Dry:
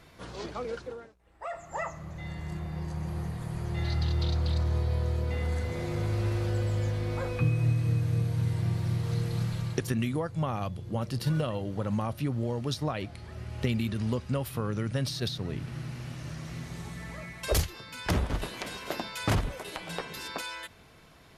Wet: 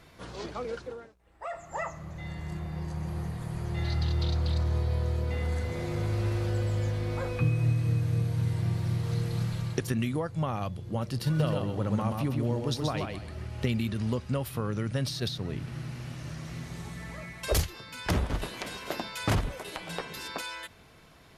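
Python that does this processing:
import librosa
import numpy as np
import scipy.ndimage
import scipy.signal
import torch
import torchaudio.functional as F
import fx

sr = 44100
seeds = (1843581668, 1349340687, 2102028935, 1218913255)

y = fx.echo_feedback(x, sr, ms=129, feedback_pct=25, wet_db=-4, at=(11.38, 13.46), fade=0.02)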